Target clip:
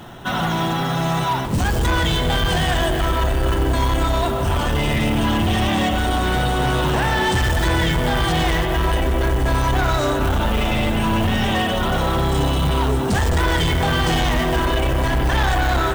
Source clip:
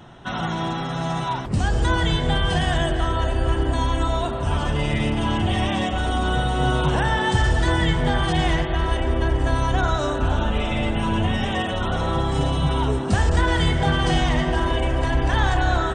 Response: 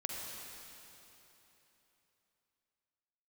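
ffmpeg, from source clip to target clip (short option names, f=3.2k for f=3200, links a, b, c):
-filter_complex "[0:a]acrusher=bits=5:mode=log:mix=0:aa=0.000001,highshelf=f=5.1k:g=6,bandreject=f=50:t=h:w=6,bandreject=f=100:t=h:w=6,bandreject=f=150:t=h:w=6,asoftclip=type=tanh:threshold=-21.5dB,asplit=2[a][b];[1:a]atrim=start_sample=2205,asetrate=79380,aresample=44100,lowpass=4.8k[c];[b][c]afir=irnorm=-1:irlink=0,volume=-5dB[d];[a][d]amix=inputs=2:normalize=0,volume=5dB"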